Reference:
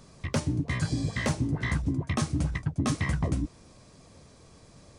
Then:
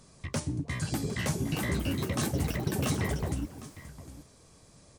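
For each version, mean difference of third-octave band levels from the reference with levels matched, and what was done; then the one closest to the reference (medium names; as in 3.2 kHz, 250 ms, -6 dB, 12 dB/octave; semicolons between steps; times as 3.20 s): 6.0 dB: peaking EQ 9 kHz +7 dB 1.2 oct; hard clipper -20 dBFS, distortion -27 dB; on a send: delay 758 ms -15 dB; on the sum: ever faster or slower copies 698 ms, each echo +6 st, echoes 3; trim -4.5 dB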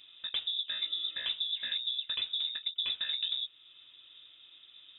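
19.0 dB: high-pass 62 Hz; treble shelf 2.2 kHz -9 dB; in parallel at +1 dB: compression, threshold -43 dBFS, peak gain reduction 18.5 dB; on the sum: frequency inversion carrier 3.7 kHz; trim -8 dB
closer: first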